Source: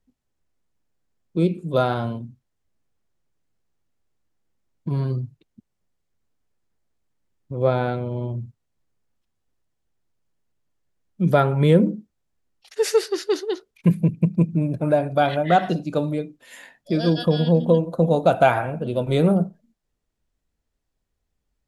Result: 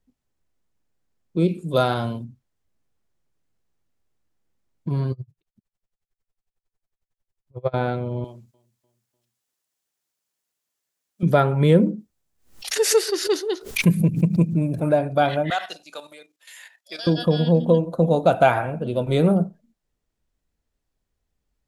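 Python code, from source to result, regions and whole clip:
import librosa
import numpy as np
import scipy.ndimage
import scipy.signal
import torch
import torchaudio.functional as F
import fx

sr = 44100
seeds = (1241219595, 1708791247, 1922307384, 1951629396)

y = fx.chain(x, sr, fx.high_shelf(hz=3600.0, db=10.0),
    fx.notch(hz=6200.0, q=22.0), at=(1.48, 2.24))
y = fx.chain(y, sr, fx.peak_eq(hz=260.0, db=-13.5, octaves=0.54),
    fx.tremolo_db(hz=11.0, depth_db=31), at=(5.12, 7.74))
y = fx.chain(y, sr, fx.highpass(hz=840.0, slope=6),
    fx.high_shelf(hz=4300.0, db=11.5),
    fx.echo_feedback(ms=298, feedback_pct=47, wet_db=-23.5), at=(8.24, 11.23))
y = fx.chain(y, sr, fx.high_shelf(hz=5700.0, db=9.0),
    fx.pre_swell(db_per_s=120.0), at=(11.98, 14.89))
y = fx.chain(y, sr, fx.highpass(hz=950.0, slope=12),
    fx.high_shelf(hz=2100.0, db=8.5),
    fx.level_steps(step_db=11), at=(15.5, 17.07))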